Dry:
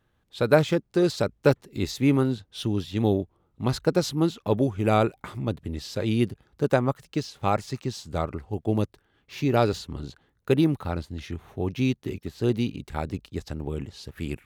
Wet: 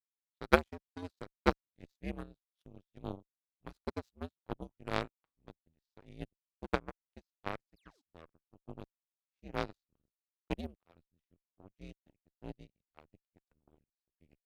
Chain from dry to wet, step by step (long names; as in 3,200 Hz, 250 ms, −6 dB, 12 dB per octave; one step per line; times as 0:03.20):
frequency shifter −84 Hz
sound drawn into the spectrogram fall, 0:07.76–0:08.02, 230–5,400 Hz −30 dBFS
harmonic generator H 3 −8 dB, 5 −26 dB, 7 −42 dB, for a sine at −4 dBFS
level −1 dB